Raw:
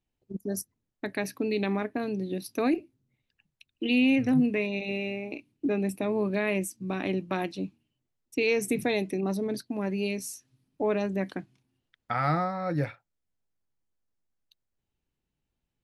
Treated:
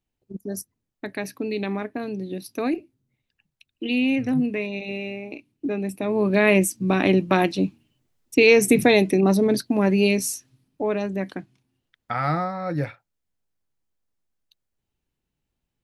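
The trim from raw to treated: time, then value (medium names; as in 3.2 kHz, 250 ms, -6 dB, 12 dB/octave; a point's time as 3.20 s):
5.93 s +1 dB
6.46 s +11 dB
10.30 s +11 dB
10.82 s +2.5 dB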